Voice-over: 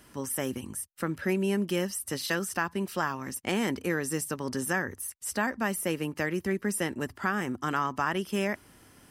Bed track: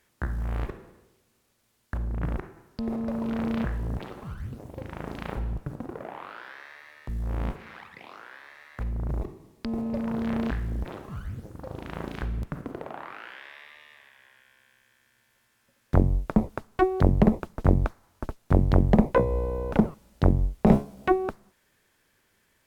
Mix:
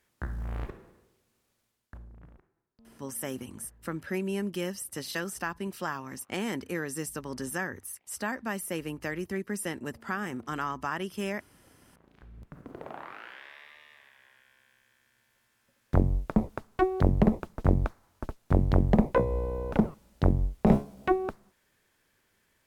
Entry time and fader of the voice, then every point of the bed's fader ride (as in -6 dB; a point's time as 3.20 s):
2.85 s, -4.0 dB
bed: 1.59 s -5 dB
2.44 s -28.5 dB
11.99 s -28.5 dB
12.88 s -3 dB